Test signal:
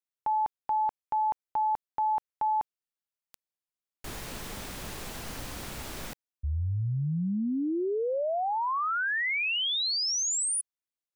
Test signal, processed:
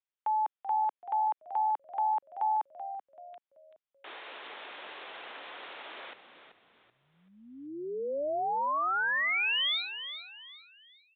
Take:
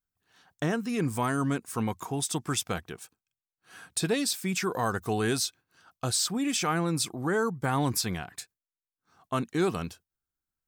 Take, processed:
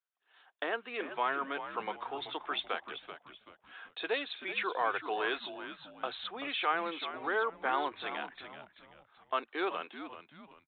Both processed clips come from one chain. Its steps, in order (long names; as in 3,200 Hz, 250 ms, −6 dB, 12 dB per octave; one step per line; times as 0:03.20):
Bessel high-pass filter 600 Hz, order 6
on a send: echo with shifted repeats 383 ms, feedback 34%, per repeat −78 Hz, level −11 dB
on the sum: downsampling to 8,000 Hz